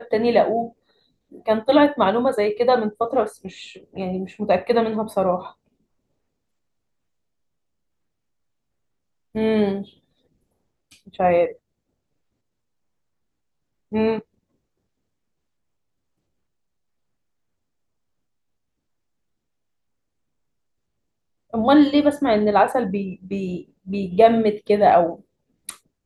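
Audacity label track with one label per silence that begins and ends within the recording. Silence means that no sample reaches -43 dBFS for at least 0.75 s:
5.520000	9.350000	silence
9.890000	10.920000	silence
11.560000	13.920000	silence
14.220000	21.530000	silence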